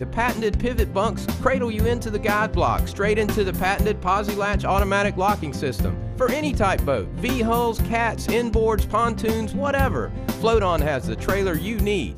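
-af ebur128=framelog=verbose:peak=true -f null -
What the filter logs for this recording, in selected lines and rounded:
Integrated loudness:
  I:         -22.3 LUFS
  Threshold: -32.3 LUFS
Loudness range:
  LRA:         0.9 LU
  Threshold: -42.2 LUFS
  LRA low:   -22.6 LUFS
  LRA high:  -21.7 LUFS
True peak:
  Peak:       -5.6 dBFS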